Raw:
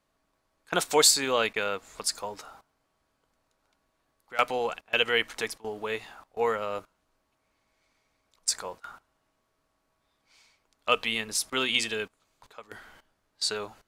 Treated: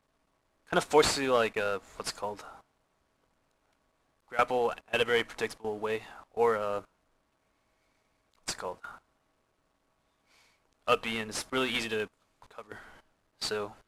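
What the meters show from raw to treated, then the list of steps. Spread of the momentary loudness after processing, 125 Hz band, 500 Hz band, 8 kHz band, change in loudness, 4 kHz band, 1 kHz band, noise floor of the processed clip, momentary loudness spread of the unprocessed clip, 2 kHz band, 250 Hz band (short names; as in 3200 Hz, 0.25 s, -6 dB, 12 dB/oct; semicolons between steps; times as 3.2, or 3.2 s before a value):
16 LU, +2.5 dB, +1.0 dB, -11.0 dB, -3.5 dB, -7.0 dB, -0.5 dB, -75 dBFS, 16 LU, -3.5 dB, +1.0 dB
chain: CVSD 64 kbps; high shelf 2500 Hz -9 dB; gain +1.5 dB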